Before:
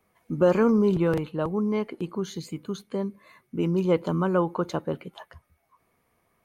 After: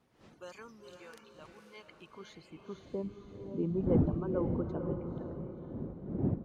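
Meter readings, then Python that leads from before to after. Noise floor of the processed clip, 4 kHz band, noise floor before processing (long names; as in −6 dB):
−61 dBFS, below −10 dB, −71 dBFS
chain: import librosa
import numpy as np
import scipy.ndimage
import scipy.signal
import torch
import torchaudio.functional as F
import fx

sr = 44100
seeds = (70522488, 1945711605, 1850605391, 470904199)

p1 = fx.dmg_wind(x, sr, seeds[0], corner_hz=230.0, level_db=-27.0)
p2 = fx.low_shelf(p1, sr, hz=130.0, db=9.0)
p3 = fx.filter_sweep_bandpass(p2, sr, from_hz=6300.0, to_hz=320.0, start_s=1.62, end_s=3.1, q=0.88)
p4 = fx.dereverb_blind(p3, sr, rt60_s=1.7)
p5 = p4 + fx.echo_diffused(p4, sr, ms=507, feedback_pct=46, wet_db=-6.0, dry=0)
y = F.gain(torch.from_numpy(p5), -7.5).numpy()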